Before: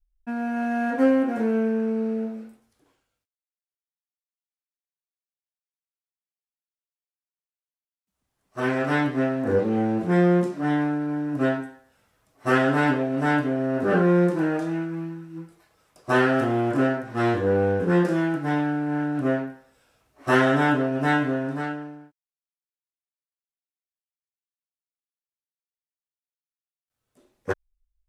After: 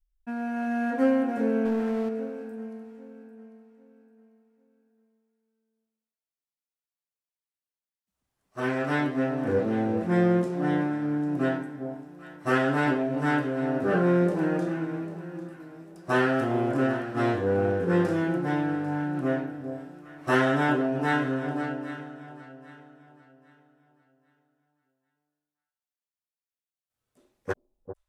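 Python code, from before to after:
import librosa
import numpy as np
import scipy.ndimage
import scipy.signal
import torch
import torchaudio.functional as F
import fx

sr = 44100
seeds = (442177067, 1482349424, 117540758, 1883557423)

y = fx.echo_alternate(x, sr, ms=398, hz=860.0, feedback_pct=55, wet_db=-8.5)
y = fx.power_curve(y, sr, exponent=0.7, at=(1.65, 2.09))
y = y * librosa.db_to_amplitude(-3.5)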